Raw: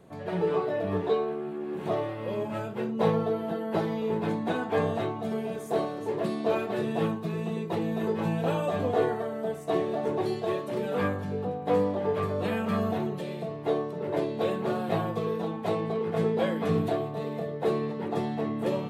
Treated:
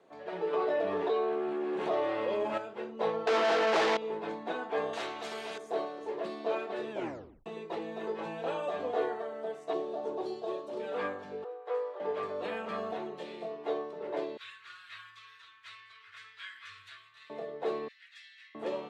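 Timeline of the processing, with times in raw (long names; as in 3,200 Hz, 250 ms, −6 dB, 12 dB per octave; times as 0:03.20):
0:00.53–0:02.58: envelope flattener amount 70%
0:03.27–0:03.97: mid-hump overdrive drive 35 dB, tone 6,800 Hz, clips at −14.5 dBFS
0:04.93–0:05.58: every bin compressed towards the loudest bin 2 to 1
0:06.91: tape stop 0.55 s
0:09.73–0:10.80: parametric band 2,000 Hz −12 dB 1 octave
0:11.44–0:12.00: Chebyshev high-pass with heavy ripple 330 Hz, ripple 9 dB
0:13.16–0:13.69: double-tracking delay 23 ms −3.5 dB
0:14.37–0:17.30: inverse Chebyshev band-stop filter 160–820 Hz
0:17.88–0:18.55: Butterworth high-pass 1,700 Hz 48 dB per octave
whole clip: three-way crossover with the lows and the highs turned down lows −23 dB, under 300 Hz, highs −24 dB, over 7,200 Hz; level −4.5 dB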